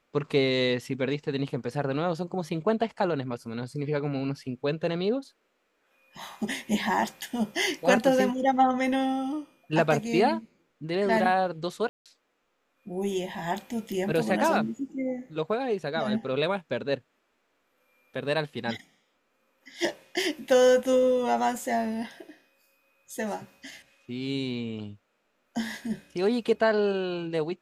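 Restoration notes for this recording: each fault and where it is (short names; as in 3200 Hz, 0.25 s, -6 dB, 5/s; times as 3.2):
11.89–12.06 gap 0.167 s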